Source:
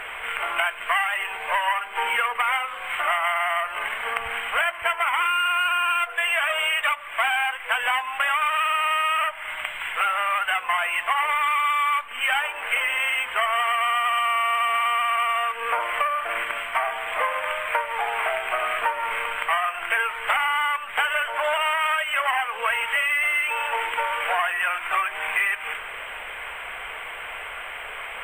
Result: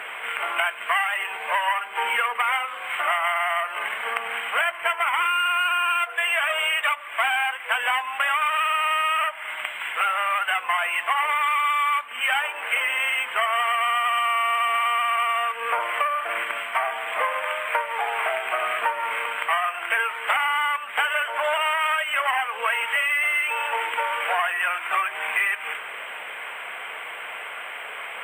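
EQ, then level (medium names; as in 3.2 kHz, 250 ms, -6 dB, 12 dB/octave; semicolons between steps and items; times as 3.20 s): high-pass 190 Hz 24 dB/octave; 0.0 dB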